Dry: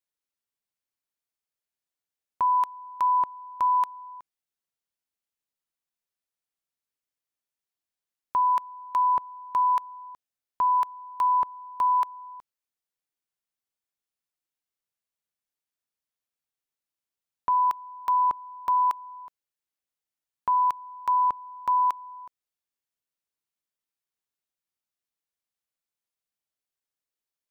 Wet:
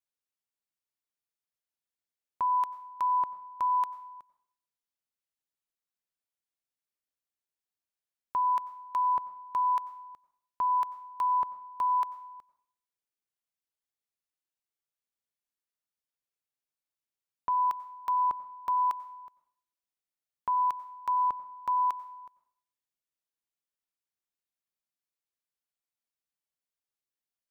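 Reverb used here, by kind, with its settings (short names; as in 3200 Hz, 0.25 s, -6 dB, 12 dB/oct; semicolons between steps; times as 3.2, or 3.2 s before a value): plate-style reverb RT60 0.59 s, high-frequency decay 0.95×, pre-delay 80 ms, DRR 16.5 dB; gain -5 dB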